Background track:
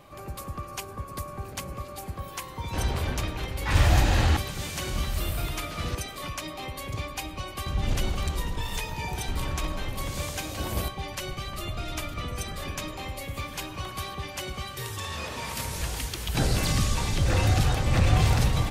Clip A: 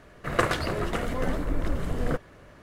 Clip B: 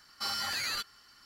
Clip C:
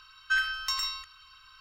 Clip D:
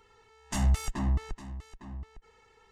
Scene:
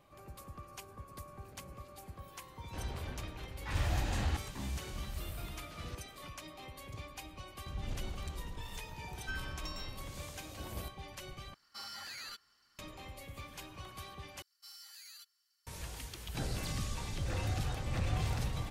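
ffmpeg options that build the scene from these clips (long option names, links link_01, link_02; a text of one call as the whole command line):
ffmpeg -i bed.wav -i cue0.wav -i cue1.wav -i cue2.wav -i cue3.wav -filter_complex "[2:a]asplit=2[link_01][link_02];[0:a]volume=-13dB[link_03];[4:a]highpass=48[link_04];[link_02]aderivative[link_05];[link_03]asplit=3[link_06][link_07][link_08];[link_06]atrim=end=11.544[link_09];[link_01]atrim=end=1.25,asetpts=PTS-STARTPTS,volume=-12dB[link_10];[link_07]atrim=start=12.786:end=14.424[link_11];[link_05]atrim=end=1.25,asetpts=PTS-STARTPTS,volume=-14.5dB[link_12];[link_08]atrim=start=15.666[link_13];[link_04]atrim=end=2.71,asetpts=PTS-STARTPTS,volume=-11.5dB,afade=type=in:duration=0.004:curve=hsin,afade=type=out:start_time=2.706:duration=0.004:curve=hsin,adelay=3600[link_14];[3:a]atrim=end=1.6,asetpts=PTS-STARTPTS,volume=-16.5dB,afade=type=in:duration=0.004:curve=hsin,afade=type=out:start_time=1.596:duration=0.004:curve=hsin,adelay=8970[link_15];[link_09][link_10]acrossfade=duration=0.004:curve1=hsin:curve2=hsin[link_16];[link_16][link_11]acrossfade=duration=0.004:curve1=hsin:curve2=hsin[link_17];[link_17][link_12]acrossfade=duration=0.004:curve1=hsin:curve2=hsin[link_18];[link_18][link_13]acrossfade=duration=0.004:curve1=hsin:curve2=hsin[link_19];[link_19][link_14][link_15]amix=inputs=3:normalize=0" out.wav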